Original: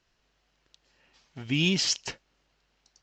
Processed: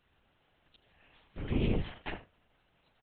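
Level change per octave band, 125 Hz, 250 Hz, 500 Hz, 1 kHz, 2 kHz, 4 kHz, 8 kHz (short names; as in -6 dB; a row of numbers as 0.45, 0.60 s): -3.0 dB, -5.5 dB, -1.0 dB, +2.0 dB, -12.0 dB, -20.0 dB, under -40 dB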